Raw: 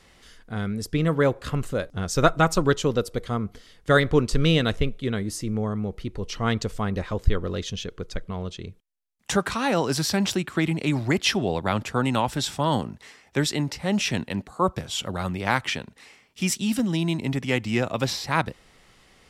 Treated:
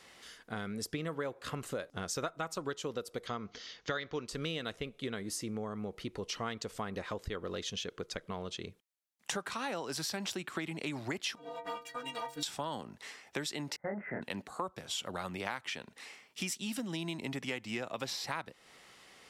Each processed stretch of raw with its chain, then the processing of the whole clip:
3.27–4.27 s: steep low-pass 6.6 kHz 72 dB/octave + treble shelf 2 kHz +8 dB
11.35–12.43 s: comb filter that takes the minimum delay 4.2 ms + inharmonic resonator 140 Hz, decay 0.4 s, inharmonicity 0.03
13.76–14.22 s: gate -33 dBFS, range -22 dB + rippled Chebyshev low-pass 2.1 kHz, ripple 6 dB + doubling 25 ms -2.5 dB
whole clip: high-pass 400 Hz 6 dB/octave; compression 6:1, threshold -35 dBFS

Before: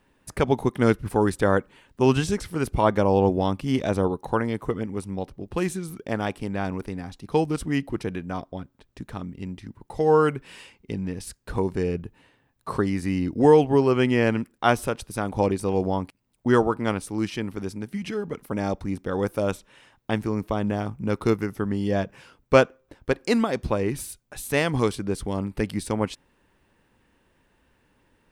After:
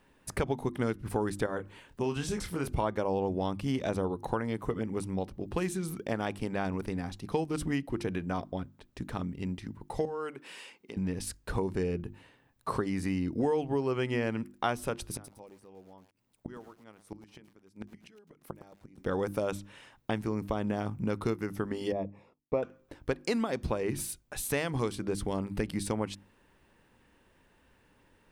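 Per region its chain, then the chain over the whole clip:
1.46–2.67 s: compression 1.5:1, threshold -36 dBFS + doubling 28 ms -8 dB
10.05–10.97 s: high-pass 280 Hz + compression 2:1, threshold -44 dBFS
15.13–18.98 s: bass shelf 69 Hz -9.5 dB + inverted gate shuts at -24 dBFS, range -28 dB + bit-crushed delay 110 ms, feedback 35%, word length 9-bit, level -11.5 dB
21.92–22.63 s: gate -53 dBFS, range -21 dB + boxcar filter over 29 samples + bass shelf 230 Hz -11.5 dB
whole clip: hum notches 50/100/150/200/250/300/350 Hz; compression 4:1, threshold -28 dBFS

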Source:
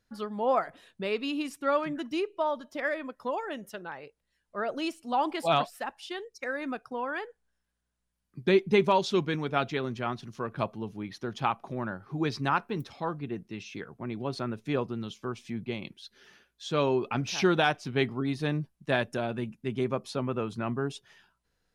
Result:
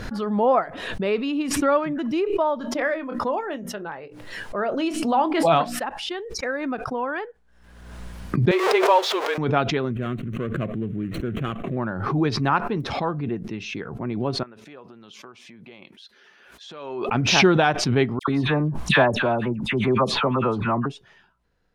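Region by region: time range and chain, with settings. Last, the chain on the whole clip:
2.59–5.80 s: hum notches 60/120/180/240/300 Hz + doubling 25 ms -13.5 dB
8.51–9.38 s: jump at every zero crossing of -29 dBFS + elliptic high-pass 450 Hz, stop band 70 dB + frequency shift -16 Hz
9.91–11.77 s: median filter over 25 samples + static phaser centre 2.1 kHz, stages 4 + level flattener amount 50%
14.43–17.09 s: compression, threshold -40 dBFS + high-pass 780 Hz 6 dB/octave
18.19–20.86 s: peaking EQ 1 kHz +9 dB 0.96 oct + phase dispersion lows, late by 89 ms, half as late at 1.8 kHz
whole clip: low-pass 1.8 kHz 6 dB/octave; swell ahead of each attack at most 43 dB/s; trim +7 dB

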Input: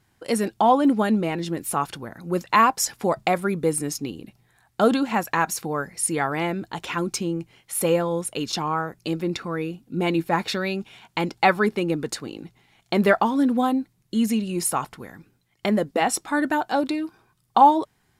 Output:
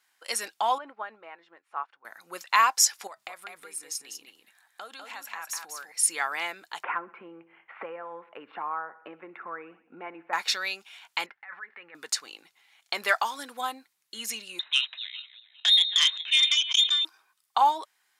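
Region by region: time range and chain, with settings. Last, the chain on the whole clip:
0.78–2.05 s: low-pass 1.3 kHz + peaking EQ 170 Hz -10.5 dB 2.5 oct + upward expansion, over -44 dBFS
3.07–5.92 s: compression 3:1, threshold -35 dBFS + delay 199 ms -4.5 dB
6.83–10.33 s: Bessel low-pass 1.2 kHz, order 8 + feedback delay 60 ms, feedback 54%, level -19 dB + three bands compressed up and down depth 100%
11.26–11.95 s: peaking EQ 320 Hz -6.5 dB 0.42 oct + compressor with a negative ratio -28 dBFS + four-pole ladder low-pass 2 kHz, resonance 70%
13.08–13.61 s: tone controls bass -6 dB, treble +6 dB + tape noise reduction on one side only decoder only
14.59–17.05 s: backward echo that repeats 203 ms, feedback 45%, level -13.5 dB + frequency inversion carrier 3.9 kHz + transformer saturation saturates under 3.3 kHz
whole clip: high-pass 1.2 kHz 12 dB/octave; dynamic bell 5.8 kHz, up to +6 dB, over -45 dBFS, Q 1.6

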